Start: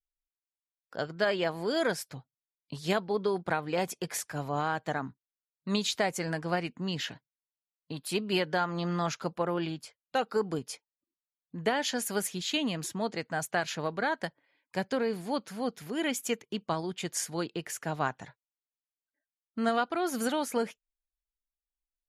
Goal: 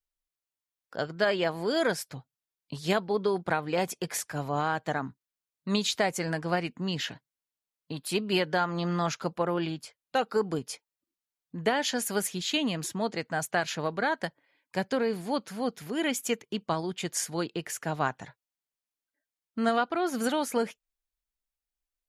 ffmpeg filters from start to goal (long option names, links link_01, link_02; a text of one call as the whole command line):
ffmpeg -i in.wav -filter_complex "[0:a]asettb=1/sr,asplit=3[link_01][link_02][link_03];[link_01]atrim=end=19.784[link_04];[link_02]atrim=start=19.78:end=20.24,asetpts=PTS-STARTPTS,afade=type=in:duration=0.004:curve=qsin,afade=type=out:start_time=0.456:duration=0.004:curve=qsin,highshelf=frequency=6800:gain=-8[link_05];[link_03]atrim=start=20.236[link_06];[link_04][link_05]acrossfade=duration=0.004:curve1=hsin:curve2=qsin[link_07];[link_07][link_06]acrossfade=duration=0.004:curve1=qsin:curve2=hsin,volume=2dB" out.wav